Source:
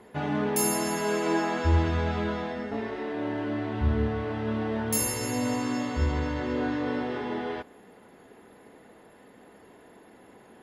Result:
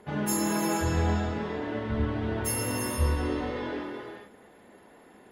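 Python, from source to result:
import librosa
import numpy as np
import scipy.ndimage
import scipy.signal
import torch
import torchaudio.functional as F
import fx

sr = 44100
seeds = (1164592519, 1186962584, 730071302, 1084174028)

y = fx.stretch_vocoder_free(x, sr, factor=0.5)
y = fx.rev_gated(y, sr, seeds[0], gate_ms=490, shape='flat', drr_db=0.5)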